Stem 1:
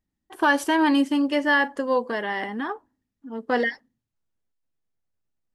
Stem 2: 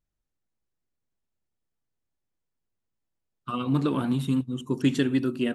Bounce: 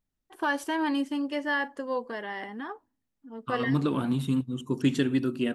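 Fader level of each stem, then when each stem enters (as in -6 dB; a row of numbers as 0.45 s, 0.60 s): -8.0 dB, -1.5 dB; 0.00 s, 0.00 s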